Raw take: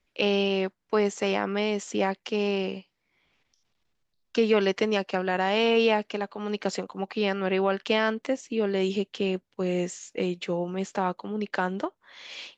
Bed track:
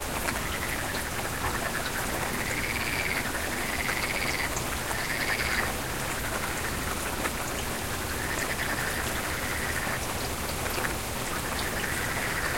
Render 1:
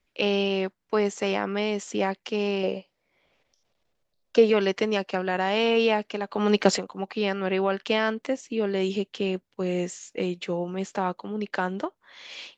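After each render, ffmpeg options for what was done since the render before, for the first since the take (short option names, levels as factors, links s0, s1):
-filter_complex "[0:a]asettb=1/sr,asplit=3[s0][s1][s2];[s0]atrim=end=2.634[s3];[s1]atrim=start=2.63:end=4.5,asetpts=PTS-STARTPTS,afade=t=in:d=0.004:c=qsin,afade=t=out:st=1.866:d=0.004:c=qsin,equalizer=f=570:t=o:w=0.77:g=11.5[s4];[s2]atrim=start=4.496[s5];[s3][s4]acrossfade=d=0.004:c1=hsin:c2=qsin[s6];[s6][s5]acrossfade=d=0.004:c1=qsin:c2=hsin,asplit=3[s7][s8][s9];[s7]atrim=end=6.322[s10];[s8]atrim=start=6.318:end=6.782,asetpts=PTS-STARTPTS,volume=2.82[s11];[s9]atrim=start=6.778[s12];[s10][s11]acrossfade=d=0.004:c1=hsin:c2=hsin[s13];[s13][s12]acrossfade=d=0.004:c1=hsin:c2=hsin"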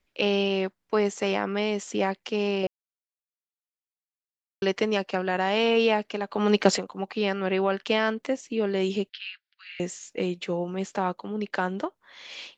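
-filter_complex "[0:a]asettb=1/sr,asplit=3[s0][s1][s2];[s0]atrim=end=9.094[s3];[s1]atrim=start=9.09:end=9.8,asetpts=PTS-STARTPTS,afade=t=in:d=0.004:c=qsin,afade=t=out:st=0.706:d=0.004:c=qsin,asuperpass=centerf=2700:order=12:qfactor=0.76[s4];[s2]atrim=start=9.796[s5];[s3][s4]acrossfade=d=0.004:c1=hsin:c2=qsin[s6];[s6][s5]acrossfade=d=0.004:c1=qsin:c2=hsin,asplit=3[s7][s8][s9];[s7]atrim=end=2.67,asetpts=PTS-STARTPTS,afade=t=out:st=2.666:d=0.004:c=hsin[s10];[s8]atrim=start=2.67:end=4.62,asetpts=PTS-STARTPTS,volume=0[s11];[s9]atrim=start=4.62,asetpts=PTS-STARTPTS,afade=t=in:d=0.004:c=hsin[s12];[s10][s11][s12]concat=n=3:v=0:a=1"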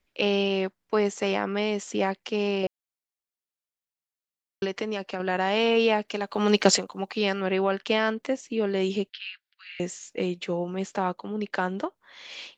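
-filter_complex "[0:a]asettb=1/sr,asplit=3[s0][s1][s2];[s0]atrim=end=4.654[s3];[s1]atrim=start=4.65:end=5.2,asetpts=PTS-STARTPTS,afade=t=in:d=0.004:c=qsin,afade=t=out:st=0.546:d=0.004:c=qsin,acompressor=threshold=0.0355:ratio=2:attack=3.2:release=140:knee=1:detection=peak[s4];[s2]atrim=start=5.196[s5];[s3][s4]acrossfade=d=0.004:c1=hsin:c2=qsin[s6];[s6][s5]acrossfade=d=0.004:c1=qsin:c2=hsin,asettb=1/sr,asplit=3[s7][s8][s9];[s7]atrim=end=6.084[s10];[s8]atrim=start=6.08:end=7.41,asetpts=PTS-STARTPTS,afade=t=in:d=0.004:c=qsin,afade=t=out:st=1.326:d=0.004:c=qsin,highshelf=f=4100:g=9[s11];[s9]atrim=start=7.406[s12];[s10][s11]acrossfade=d=0.004:c1=hsin:c2=qsin[s13];[s13][s12]acrossfade=d=0.004:c1=qsin:c2=hsin"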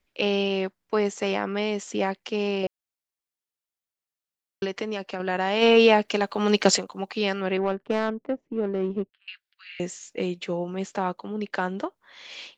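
-filter_complex "[0:a]asplit=3[s0][s1][s2];[s0]afade=t=out:st=5.61:d=0.02[s3];[s1]acontrast=46,afade=t=in:st=5.61:d=0.02,afade=t=out:st=6.31:d=0.02[s4];[s2]afade=t=in:st=6.31:d=0.02[s5];[s3][s4][s5]amix=inputs=3:normalize=0,asettb=1/sr,asplit=3[s6][s7][s8];[s6]atrim=end=7.574[s9];[s7]atrim=start=7.57:end=9.28,asetpts=PTS-STARTPTS,afade=t=in:d=0.004:c=qsin,afade=t=out:st=1.706:d=0.004:c=qsin,adynamicsmooth=sensitivity=0.5:basefreq=540[s10];[s8]atrim=start=9.276[s11];[s9][s10]acrossfade=d=0.004:c1=hsin:c2=qsin[s12];[s12][s11]acrossfade=d=0.004:c1=qsin:c2=hsin"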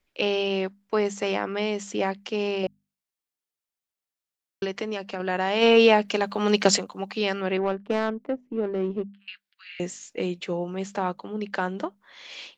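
-af "bandreject=f=50:t=h:w=6,bandreject=f=100:t=h:w=6,bandreject=f=150:t=h:w=6,bandreject=f=200:t=h:w=6,bandreject=f=250:t=h:w=6"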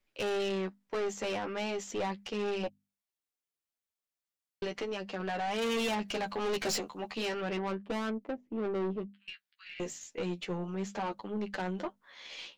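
-af "flanger=delay=8.8:depth=5.1:regen=19:speed=0.36:shape=triangular,aeval=exprs='(tanh(28.2*val(0)+0.3)-tanh(0.3))/28.2':c=same"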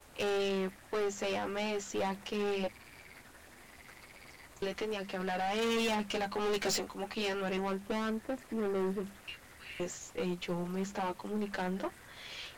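-filter_complex "[1:a]volume=0.0562[s0];[0:a][s0]amix=inputs=2:normalize=0"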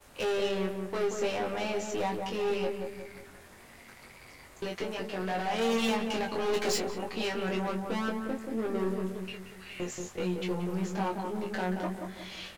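-filter_complex "[0:a]asplit=2[s0][s1];[s1]adelay=22,volume=0.668[s2];[s0][s2]amix=inputs=2:normalize=0,asplit=2[s3][s4];[s4]adelay=180,lowpass=f=990:p=1,volume=0.668,asplit=2[s5][s6];[s6]adelay=180,lowpass=f=990:p=1,volume=0.5,asplit=2[s7][s8];[s8]adelay=180,lowpass=f=990:p=1,volume=0.5,asplit=2[s9][s10];[s10]adelay=180,lowpass=f=990:p=1,volume=0.5,asplit=2[s11][s12];[s12]adelay=180,lowpass=f=990:p=1,volume=0.5,asplit=2[s13][s14];[s14]adelay=180,lowpass=f=990:p=1,volume=0.5,asplit=2[s15][s16];[s16]adelay=180,lowpass=f=990:p=1,volume=0.5[s17];[s3][s5][s7][s9][s11][s13][s15][s17]amix=inputs=8:normalize=0"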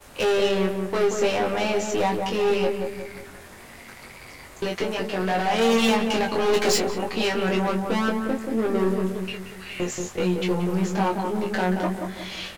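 -af "volume=2.66"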